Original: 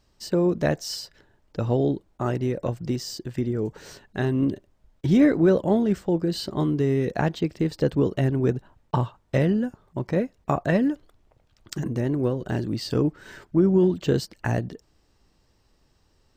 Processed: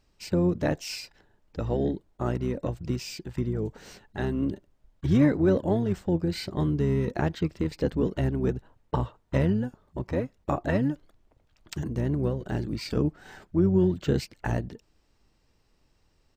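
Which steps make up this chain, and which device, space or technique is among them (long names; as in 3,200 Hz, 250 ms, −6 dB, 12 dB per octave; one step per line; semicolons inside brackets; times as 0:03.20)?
octave pedal (pitch-shifted copies added −12 semitones −5 dB)
level −4.5 dB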